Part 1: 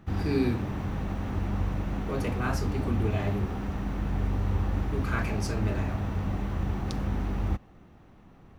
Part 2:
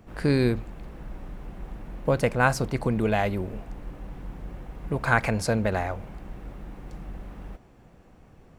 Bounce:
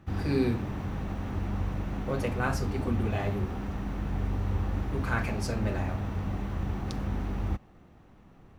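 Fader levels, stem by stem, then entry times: -2.0 dB, -12.5 dB; 0.00 s, 0.00 s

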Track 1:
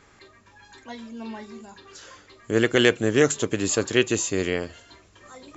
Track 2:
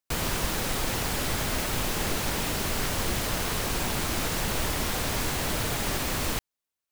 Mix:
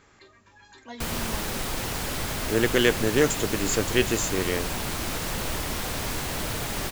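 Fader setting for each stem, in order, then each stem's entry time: -2.5 dB, -1.5 dB; 0.00 s, 0.90 s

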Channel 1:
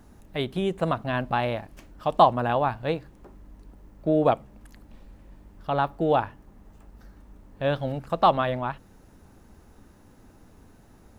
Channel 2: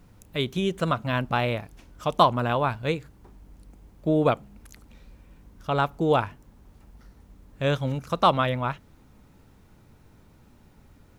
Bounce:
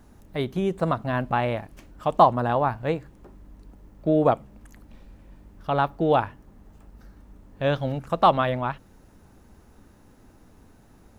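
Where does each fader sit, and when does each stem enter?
-0.5 dB, -11.0 dB; 0.00 s, 0.00 s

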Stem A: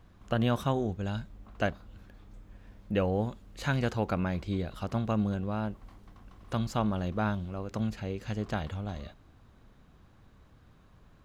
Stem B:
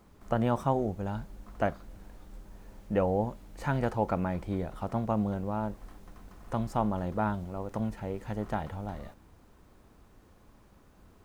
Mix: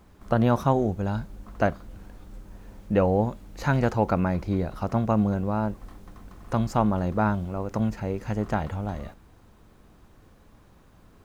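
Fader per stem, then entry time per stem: -1.0 dB, +2.0 dB; 0.00 s, 0.00 s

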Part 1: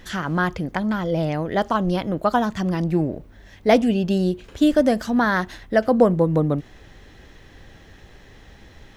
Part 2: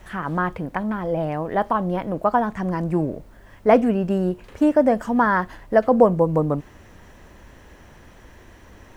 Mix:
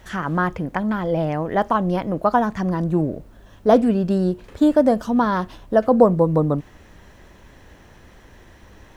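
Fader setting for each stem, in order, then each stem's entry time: -7.0 dB, -1.5 dB; 0.00 s, 0.00 s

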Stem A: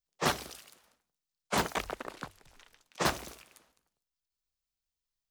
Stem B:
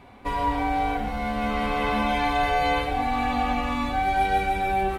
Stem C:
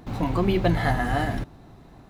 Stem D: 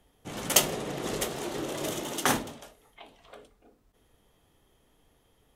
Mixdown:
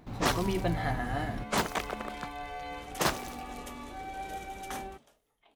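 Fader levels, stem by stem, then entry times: +0.5 dB, -17.5 dB, -8.5 dB, -16.0 dB; 0.00 s, 0.00 s, 0.00 s, 2.45 s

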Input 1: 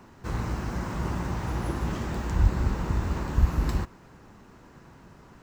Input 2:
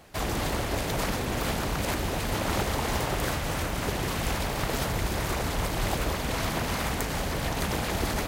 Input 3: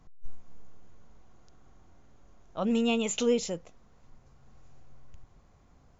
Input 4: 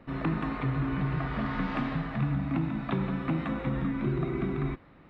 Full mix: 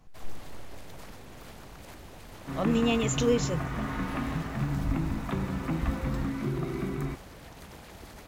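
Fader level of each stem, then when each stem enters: -10.0 dB, -18.5 dB, +0.5 dB, -2.0 dB; 2.45 s, 0.00 s, 0.00 s, 2.40 s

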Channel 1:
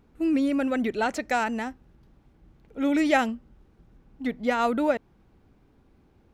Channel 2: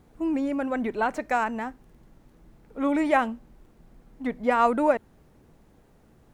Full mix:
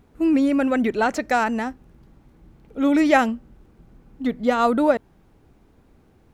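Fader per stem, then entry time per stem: +3.0 dB, -4.0 dB; 0.00 s, 0.00 s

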